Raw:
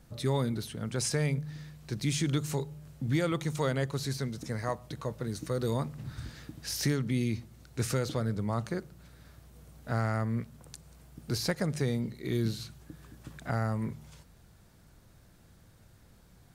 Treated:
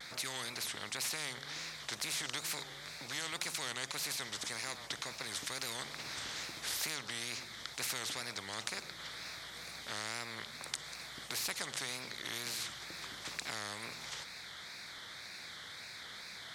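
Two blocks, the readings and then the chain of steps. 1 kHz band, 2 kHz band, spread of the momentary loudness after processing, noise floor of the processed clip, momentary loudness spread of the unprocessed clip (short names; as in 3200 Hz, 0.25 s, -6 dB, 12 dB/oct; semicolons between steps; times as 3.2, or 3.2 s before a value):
-5.5 dB, +1.5 dB, 10 LU, -49 dBFS, 15 LU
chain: double band-pass 2800 Hz, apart 0.83 oct; wow and flutter 130 cents; spectral compressor 4:1; gain +13.5 dB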